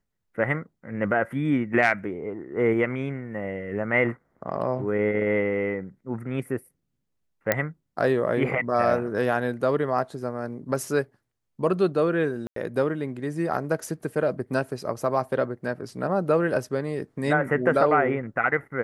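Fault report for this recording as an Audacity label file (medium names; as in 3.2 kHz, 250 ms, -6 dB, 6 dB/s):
7.520000	7.520000	pop -6 dBFS
12.470000	12.560000	dropout 93 ms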